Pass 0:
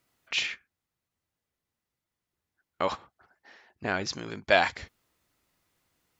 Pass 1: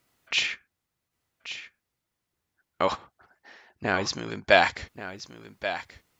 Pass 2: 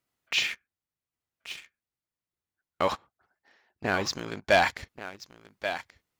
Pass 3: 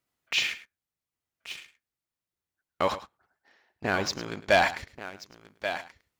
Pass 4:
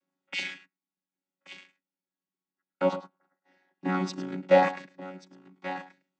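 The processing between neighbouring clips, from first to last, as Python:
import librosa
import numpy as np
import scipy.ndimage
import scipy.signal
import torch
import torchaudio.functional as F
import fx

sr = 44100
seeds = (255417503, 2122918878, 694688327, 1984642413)

y1 = x + 10.0 ** (-12.0 / 20.0) * np.pad(x, (int(1132 * sr / 1000.0), 0))[:len(x)]
y1 = y1 * librosa.db_to_amplitude(3.5)
y2 = fx.leveller(y1, sr, passes=2)
y2 = y2 * librosa.db_to_amplitude(-8.5)
y3 = y2 + 10.0 ** (-15.0 / 20.0) * np.pad(y2, (int(106 * sr / 1000.0), 0))[:len(y2)]
y4 = fx.chord_vocoder(y3, sr, chord='bare fifth', root=54)
y4 = y4 * librosa.db_to_amplitude(1.5)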